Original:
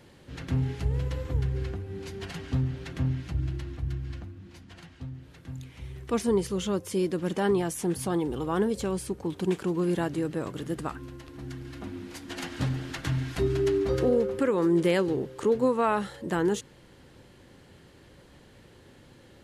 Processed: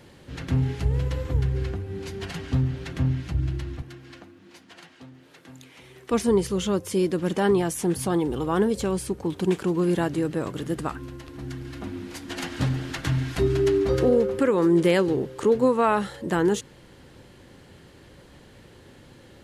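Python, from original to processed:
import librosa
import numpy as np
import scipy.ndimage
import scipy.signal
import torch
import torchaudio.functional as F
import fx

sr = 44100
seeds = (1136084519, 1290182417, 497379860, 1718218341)

y = fx.highpass(x, sr, hz=310.0, slope=12, at=(3.82, 6.11))
y = y * 10.0 ** (4.0 / 20.0)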